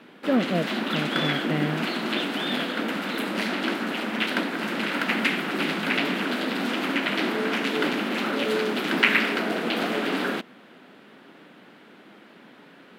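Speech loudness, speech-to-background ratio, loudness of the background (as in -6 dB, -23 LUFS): -29.0 LUFS, -3.5 dB, -25.5 LUFS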